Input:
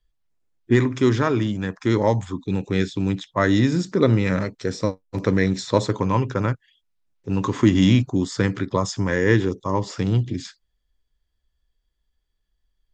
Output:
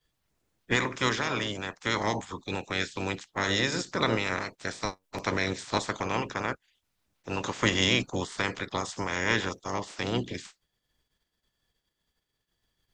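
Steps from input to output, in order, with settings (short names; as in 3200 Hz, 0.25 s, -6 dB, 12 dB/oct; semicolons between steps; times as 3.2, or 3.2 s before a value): spectral limiter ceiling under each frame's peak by 24 dB; gain -9 dB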